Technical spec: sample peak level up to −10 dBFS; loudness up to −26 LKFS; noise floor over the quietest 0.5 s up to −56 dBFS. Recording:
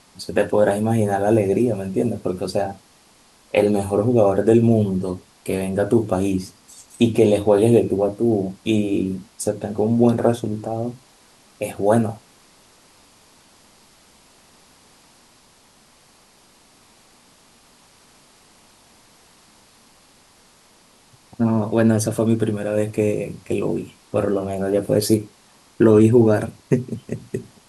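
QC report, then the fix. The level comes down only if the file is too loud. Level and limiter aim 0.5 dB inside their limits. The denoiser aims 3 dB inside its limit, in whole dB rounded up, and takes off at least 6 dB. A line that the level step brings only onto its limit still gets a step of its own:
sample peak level −3.5 dBFS: out of spec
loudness −20.0 LKFS: out of spec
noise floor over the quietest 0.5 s −54 dBFS: out of spec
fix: level −6.5 dB
brickwall limiter −10.5 dBFS

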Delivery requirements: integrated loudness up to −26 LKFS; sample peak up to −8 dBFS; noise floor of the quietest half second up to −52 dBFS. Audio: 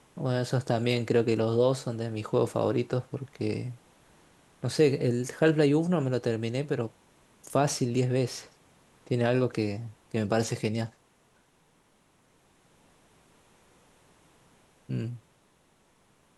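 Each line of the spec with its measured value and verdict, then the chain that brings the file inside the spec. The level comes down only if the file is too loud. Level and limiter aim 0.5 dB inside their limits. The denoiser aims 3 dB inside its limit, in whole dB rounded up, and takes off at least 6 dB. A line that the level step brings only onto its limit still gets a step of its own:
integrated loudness −28.5 LKFS: in spec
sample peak −9.5 dBFS: in spec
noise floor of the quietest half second −65 dBFS: in spec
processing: no processing needed

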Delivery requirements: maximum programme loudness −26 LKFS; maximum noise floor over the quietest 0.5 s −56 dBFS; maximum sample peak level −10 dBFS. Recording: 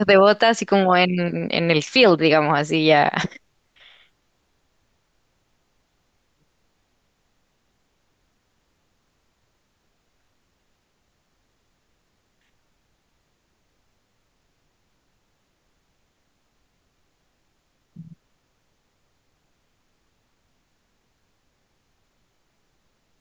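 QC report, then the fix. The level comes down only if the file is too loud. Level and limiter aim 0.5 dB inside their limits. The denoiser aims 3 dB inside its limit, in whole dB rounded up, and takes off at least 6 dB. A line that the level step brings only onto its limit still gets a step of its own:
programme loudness −17.5 LKFS: out of spec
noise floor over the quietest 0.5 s −69 dBFS: in spec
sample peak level −3.0 dBFS: out of spec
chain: level −9 dB

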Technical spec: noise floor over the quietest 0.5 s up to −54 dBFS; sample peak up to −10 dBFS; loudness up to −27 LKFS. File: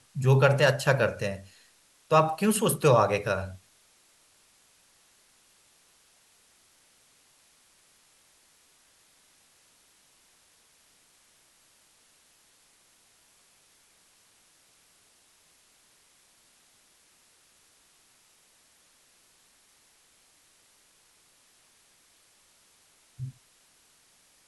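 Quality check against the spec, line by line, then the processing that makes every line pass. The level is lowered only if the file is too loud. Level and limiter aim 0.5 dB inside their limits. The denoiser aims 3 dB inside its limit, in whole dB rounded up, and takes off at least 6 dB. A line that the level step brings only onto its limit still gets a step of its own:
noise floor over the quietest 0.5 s −63 dBFS: in spec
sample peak −8.0 dBFS: out of spec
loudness −25.0 LKFS: out of spec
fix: level −2.5 dB

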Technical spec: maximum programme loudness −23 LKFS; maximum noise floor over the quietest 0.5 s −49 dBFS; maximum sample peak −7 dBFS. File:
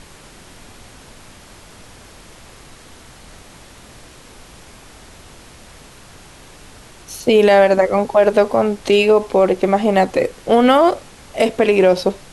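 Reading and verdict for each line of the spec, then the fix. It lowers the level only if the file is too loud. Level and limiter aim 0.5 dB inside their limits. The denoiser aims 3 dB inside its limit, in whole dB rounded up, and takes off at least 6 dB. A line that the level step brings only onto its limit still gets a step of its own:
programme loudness −14.5 LKFS: out of spec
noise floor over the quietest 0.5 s −42 dBFS: out of spec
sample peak −3.0 dBFS: out of spec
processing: level −9 dB

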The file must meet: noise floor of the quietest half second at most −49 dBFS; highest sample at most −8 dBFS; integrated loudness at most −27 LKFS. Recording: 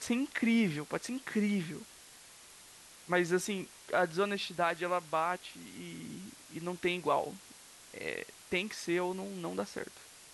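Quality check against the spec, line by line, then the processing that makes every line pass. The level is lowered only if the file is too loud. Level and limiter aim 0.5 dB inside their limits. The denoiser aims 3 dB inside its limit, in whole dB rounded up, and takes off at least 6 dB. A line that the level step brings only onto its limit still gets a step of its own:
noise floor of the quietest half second −55 dBFS: in spec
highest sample −16.5 dBFS: in spec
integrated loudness −34.0 LKFS: in spec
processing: no processing needed

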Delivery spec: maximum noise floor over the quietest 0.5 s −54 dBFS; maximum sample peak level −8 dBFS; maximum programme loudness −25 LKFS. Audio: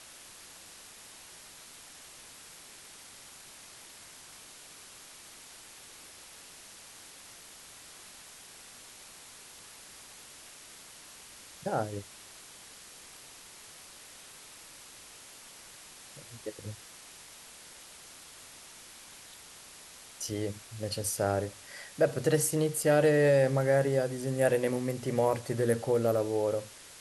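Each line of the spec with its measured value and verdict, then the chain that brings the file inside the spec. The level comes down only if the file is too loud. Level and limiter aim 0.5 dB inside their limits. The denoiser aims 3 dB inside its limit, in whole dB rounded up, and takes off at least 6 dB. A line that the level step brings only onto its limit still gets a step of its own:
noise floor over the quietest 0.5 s −51 dBFS: out of spec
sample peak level −13.0 dBFS: in spec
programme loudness −29.5 LKFS: in spec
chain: broadband denoise 6 dB, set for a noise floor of −51 dBFS

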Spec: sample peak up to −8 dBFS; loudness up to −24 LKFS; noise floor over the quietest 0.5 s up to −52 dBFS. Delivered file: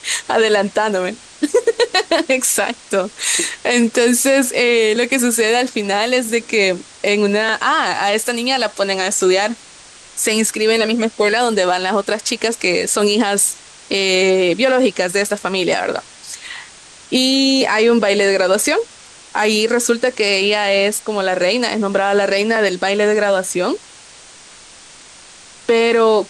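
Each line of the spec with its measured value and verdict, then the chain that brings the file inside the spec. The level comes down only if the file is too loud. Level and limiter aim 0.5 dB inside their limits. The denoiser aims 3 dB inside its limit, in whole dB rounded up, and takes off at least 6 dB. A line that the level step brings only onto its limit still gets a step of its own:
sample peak −4.5 dBFS: out of spec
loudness −15.5 LKFS: out of spec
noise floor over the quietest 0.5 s −41 dBFS: out of spec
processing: broadband denoise 6 dB, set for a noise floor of −41 dBFS
level −9 dB

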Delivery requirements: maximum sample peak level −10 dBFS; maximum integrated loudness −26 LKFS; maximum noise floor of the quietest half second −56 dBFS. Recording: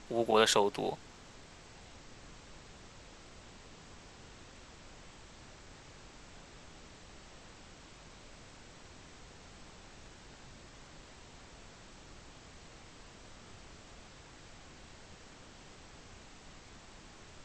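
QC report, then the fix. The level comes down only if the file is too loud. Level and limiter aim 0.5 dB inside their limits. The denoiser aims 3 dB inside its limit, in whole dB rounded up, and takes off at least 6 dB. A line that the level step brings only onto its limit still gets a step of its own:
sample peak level −11.0 dBFS: in spec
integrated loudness −29.5 LKFS: in spec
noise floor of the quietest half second −54 dBFS: out of spec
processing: broadband denoise 6 dB, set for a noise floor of −54 dBFS

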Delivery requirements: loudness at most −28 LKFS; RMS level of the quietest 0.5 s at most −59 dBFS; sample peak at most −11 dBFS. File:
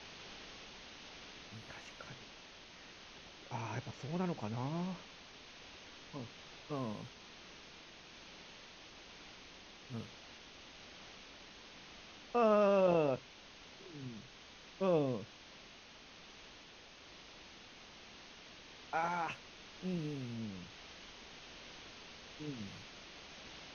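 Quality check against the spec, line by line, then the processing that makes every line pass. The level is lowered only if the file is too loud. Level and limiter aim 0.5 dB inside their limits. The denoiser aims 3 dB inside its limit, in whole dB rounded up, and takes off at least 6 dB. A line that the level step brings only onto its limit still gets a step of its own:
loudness −39.5 LKFS: in spec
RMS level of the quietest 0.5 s −57 dBFS: out of spec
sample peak −20.0 dBFS: in spec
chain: broadband denoise 6 dB, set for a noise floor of −57 dBFS

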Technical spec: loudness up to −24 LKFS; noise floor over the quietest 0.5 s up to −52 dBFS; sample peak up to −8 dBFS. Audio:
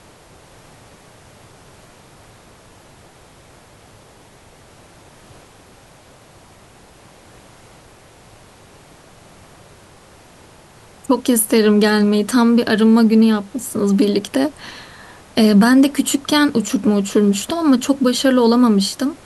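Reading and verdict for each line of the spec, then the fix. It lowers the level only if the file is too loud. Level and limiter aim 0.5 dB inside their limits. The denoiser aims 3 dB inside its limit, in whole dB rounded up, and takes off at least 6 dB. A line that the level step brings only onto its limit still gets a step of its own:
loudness −15.0 LKFS: out of spec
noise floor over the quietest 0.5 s −46 dBFS: out of spec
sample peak −4.5 dBFS: out of spec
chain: level −9.5 dB

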